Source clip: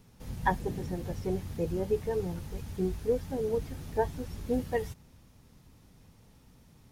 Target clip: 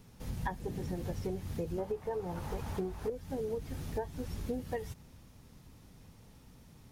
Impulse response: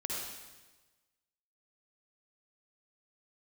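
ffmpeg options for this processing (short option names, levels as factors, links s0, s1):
-filter_complex "[0:a]asettb=1/sr,asplit=3[s0][s1][s2];[s0]atrim=end=1.784[s3];[s1]atrim=start=1.78:end=3.1,asetpts=PTS-STARTPTS,afade=t=in:d=0.004:c=qsin,afade=t=out:st=1.316:d=0.004:c=qsin,equalizer=f=890:t=o:w=1.9:g=13[s4];[s2]atrim=start=3.096[s5];[s3][s4]acrossfade=d=0.004:c1=hsin:c2=qsin[s6];[s6][s5]acrossfade=d=0.004:c1=qsin:c2=hsin,acompressor=threshold=0.02:ratio=16,volume=1.19"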